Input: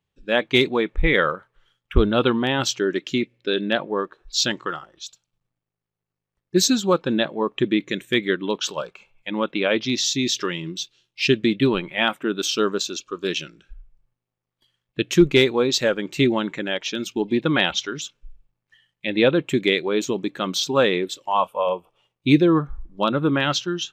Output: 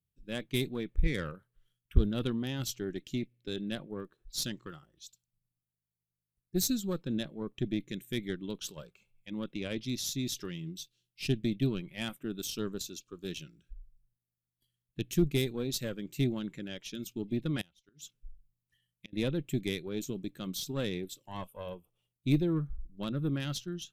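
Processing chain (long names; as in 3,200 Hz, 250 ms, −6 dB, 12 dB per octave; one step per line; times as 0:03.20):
harmonic generator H 4 −21 dB, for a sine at −4 dBFS
0:17.61–0:19.13: gate with flip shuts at −14 dBFS, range −28 dB
drawn EQ curve 140 Hz 0 dB, 910 Hz −20 dB, 6,700 Hz −7 dB, 11,000 Hz +6 dB
level −5 dB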